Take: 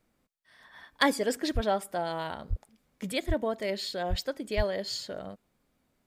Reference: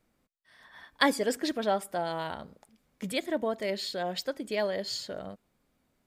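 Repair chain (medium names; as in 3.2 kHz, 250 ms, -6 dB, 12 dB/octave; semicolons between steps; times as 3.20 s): clip repair -13 dBFS; de-plosive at 1.54/2.49/3.27/4.09/4.56 s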